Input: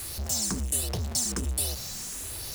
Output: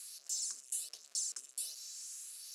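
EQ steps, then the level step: cabinet simulation 430–9600 Hz, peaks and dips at 870 Hz -10 dB, 2 kHz -4 dB, 3.4 kHz -4 dB, 9.1 kHz -5 dB; differentiator; -6.5 dB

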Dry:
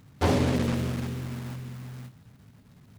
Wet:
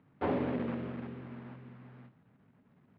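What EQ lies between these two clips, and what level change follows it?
distance through air 410 m; three-band isolator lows -17 dB, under 170 Hz, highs -15 dB, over 3.5 kHz; -5.0 dB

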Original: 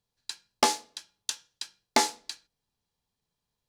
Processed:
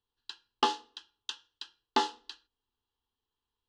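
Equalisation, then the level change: resonant low-pass 2.9 kHz, resonance Q 4.5; static phaser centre 610 Hz, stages 6; -1.5 dB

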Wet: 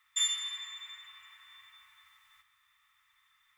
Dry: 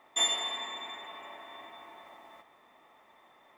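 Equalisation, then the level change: elliptic band-stop 100–1300 Hz, stop band 40 dB; bass shelf 130 Hz +3.5 dB; treble shelf 2.5 kHz +9.5 dB; -8.0 dB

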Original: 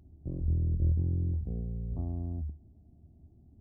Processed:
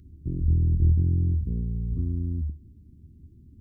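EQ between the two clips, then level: Butterworth band-stop 750 Hz, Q 0.62; band-stop 620 Hz, Q 12; +7.0 dB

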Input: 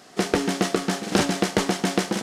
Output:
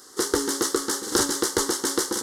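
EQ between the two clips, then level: Butterworth band-stop 670 Hz, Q 7.7; treble shelf 4.3 kHz +12 dB; static phaser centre 670 Hz, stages 6; 0.0 dB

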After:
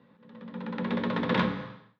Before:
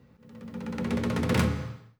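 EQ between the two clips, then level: cabinet simulation 190–4000 Hz, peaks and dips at 190 Hz +7 dB, 280 Hz +3 dB, 560 Hz +5 dB, 1 kHz +10 dB, 1.7 kHz +7 dB, 3.6 kHz +9 dB; -3.0 dB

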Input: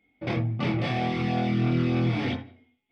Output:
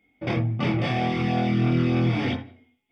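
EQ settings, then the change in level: Butterworth band-stop 4.1 kHz, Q 7.7; +2.5 dB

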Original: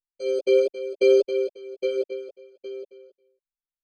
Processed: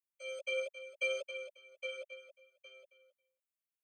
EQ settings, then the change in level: steep high-pass 580 Hz 72 dB/octave; peaking EQ 1.6 kHz -12 dB 0.36 oct; static phaser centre 1.9 kHz, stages 4; +1.5 dB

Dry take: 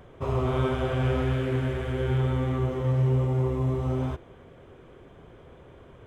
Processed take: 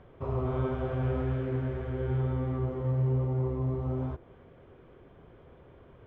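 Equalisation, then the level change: dynamic bell 3 kHz, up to -7 dB, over -52 dBFS, Q 0.74; distance through air 220 m; -4.0 dB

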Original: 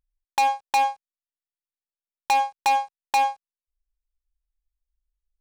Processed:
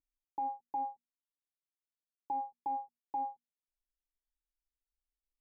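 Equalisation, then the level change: cascade formant filter u; distance through air 460 m; hum notches 60/120/180/240 Hz; 0.0 dB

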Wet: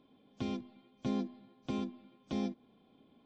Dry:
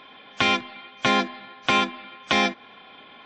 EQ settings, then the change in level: FFT filter 270 Hz 0 dB, 1.8 kHz -28 dB, 4.7 kHz -16 dB; -6.5 dB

